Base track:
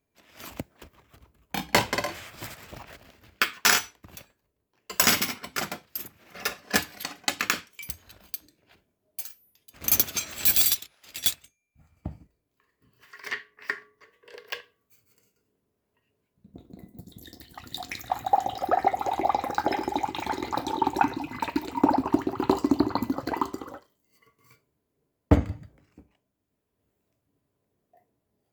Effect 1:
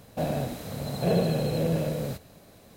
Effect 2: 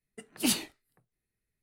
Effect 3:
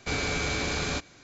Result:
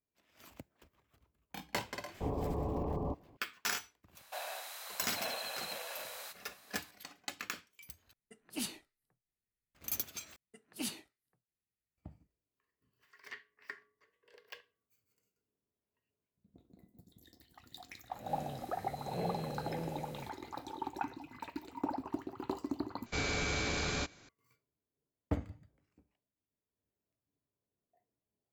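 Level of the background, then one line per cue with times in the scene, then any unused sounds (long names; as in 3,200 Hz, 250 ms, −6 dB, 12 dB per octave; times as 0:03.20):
base track −15.5 dB
0:02.14: mix in 3 −3.5 dB + Butterworth low-pass 1,100 Hz 96 dB per octave
0:04.15: mix in 1 −1.5 dB + high-pass filter 910 Hz 24 dB per octave
0:08.13: overwrite with 2 −11.5 dB
0:10.36: overwrite with 2 −12 dB + high-pass filter 47 Hz
0:18.12: mix in 1 −16 dB + peak hold with a rise ahead of every peak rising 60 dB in 0.57 s
0:23.06: overwrite with 3 −5.5 dB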